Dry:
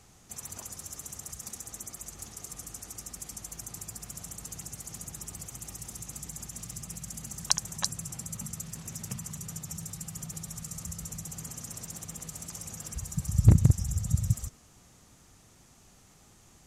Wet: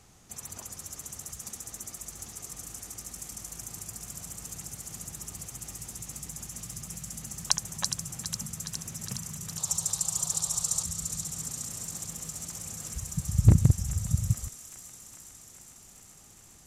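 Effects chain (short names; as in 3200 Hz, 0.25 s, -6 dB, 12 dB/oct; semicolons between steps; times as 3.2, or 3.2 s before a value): 9.58–10.83 ten-band EQ 250 Hz -9 dB, 500 Hz +5 dB, 1000 Hz +12 dB, 2000 Hz -8 dB, 4000 Hz +12 dB, 8000 Hz +11 dB; on a send: thin delay 0.413 s, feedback 76%, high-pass 1500 Hz, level -8 dB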